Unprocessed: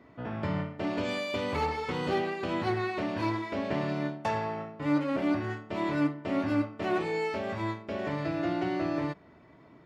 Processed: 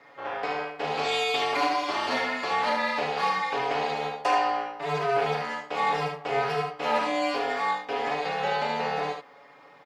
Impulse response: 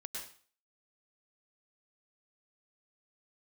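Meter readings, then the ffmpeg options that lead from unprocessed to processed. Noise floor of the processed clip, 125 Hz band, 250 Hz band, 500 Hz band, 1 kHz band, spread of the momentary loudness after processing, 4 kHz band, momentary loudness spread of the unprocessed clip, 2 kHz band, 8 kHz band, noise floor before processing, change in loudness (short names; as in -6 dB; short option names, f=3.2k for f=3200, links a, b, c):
-52 dBFS, -6.5 dB, -8.0 dB, +3.0 dB, +9.5 dB, 6 LU, +10.0 dB, 5 LU, +7.5 dB, n/a, -56 dBFS, +4.0 dB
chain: -filter_complex "[0:a]highpass=f=510:w=0.5412,highpass=f=510:w=1.3066,equalizer=f=5.1k:w=1.5:g=2.5,aecho=1:1:7.1:0.65,asplit=2[a][b];[b]asoftclip=type=tanh:threshold=-28.5dB,volume=-6dB[c];[a][c]amix=inputs=2:normalize=0,aeval=exprs='val(0)*sin(2*PI*140*n/s)':c=same,aecho=1:1:39|74:0.473|0.531,volume=5dB"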